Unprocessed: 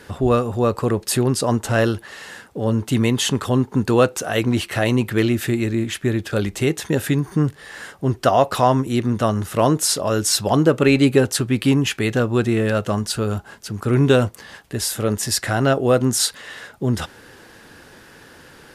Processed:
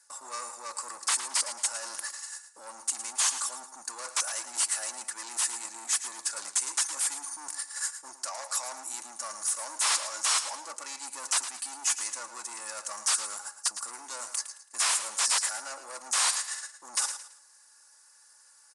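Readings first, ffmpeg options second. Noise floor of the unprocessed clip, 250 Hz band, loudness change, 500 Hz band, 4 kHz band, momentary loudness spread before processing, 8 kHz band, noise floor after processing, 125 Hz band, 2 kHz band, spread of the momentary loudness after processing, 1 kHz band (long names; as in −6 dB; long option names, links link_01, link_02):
−46 dBFS, −40.0 dB, −10.5 dB, −29.5 dB, −6.0 dB, 9 LU, 0.0 dB, −59 dBFS, below −40 dB, −10.0 dB, 12 LU, −12.5 dB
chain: -filter_complex "[0:a]agate=range=-23dB:threshold=-34dB:ratio=16:detection=peak,aecho=1:1:3.5:0.68,areverse,acompressor=threshold=-28dB:ratio=6,areverse,asoftclip=type=tanh:threshold=-32dB,aexciter=amount=12.1:drive=7.3:freq=5000,aeval=exprs='0.188*(abs(mod(val(0)/0.188+3,4)-2)-1)':channel_layout=same,highpass=frequency=1000:width_type=q:width=2.2,asplit=2[link_01][link_02];[link_02]aecho=0:1:110|220|330:0.282|0.0902|0.0289[link_03];[link_01][link_03]amix=inputs=2:normalize=0,aresample=22050,aresample=44100,volume=-3.5dB" -ar 48000 -c:a libopus -b:a 128k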